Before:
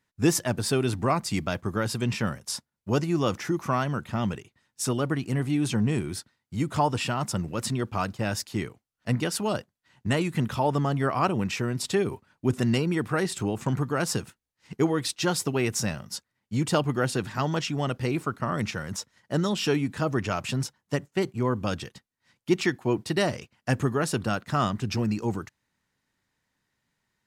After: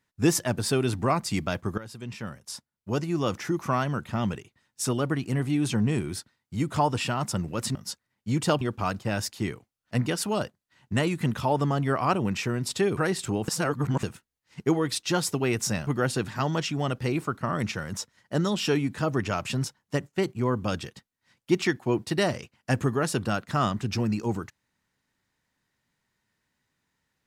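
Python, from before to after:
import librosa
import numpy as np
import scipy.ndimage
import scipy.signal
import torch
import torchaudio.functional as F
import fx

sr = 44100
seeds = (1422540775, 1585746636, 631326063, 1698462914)

y = fx.edit(x, sr, fx.fade_in_from(start_s=1.78, length_s=1.85, floor_db=-15.5),
    fx.cut(start_s=12.11, length_s=0.99),
    fx.reverse_span(start_s=13.61, length_s=0.55),
    fx.move(start_s=16.0, length_s=0.86, to_s=7.75), tone=tone)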